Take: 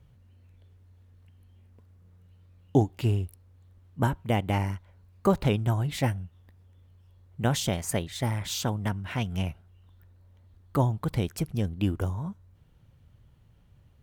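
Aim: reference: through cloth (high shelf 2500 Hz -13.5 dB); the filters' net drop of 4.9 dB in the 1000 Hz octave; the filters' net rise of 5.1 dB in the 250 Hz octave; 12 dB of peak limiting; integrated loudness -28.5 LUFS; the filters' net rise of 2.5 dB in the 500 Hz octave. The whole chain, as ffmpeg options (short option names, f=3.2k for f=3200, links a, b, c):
-af "equalizer=f=250:t=o:g=6.5,equalizer=f=500:t=o:g=3,equalizer=f=1k:t=o:g=-6.5,alimiter=limit=-16.5dB:level=0:latency=1,highshelf=f=2.5k:g=-13.5,volume=1dB"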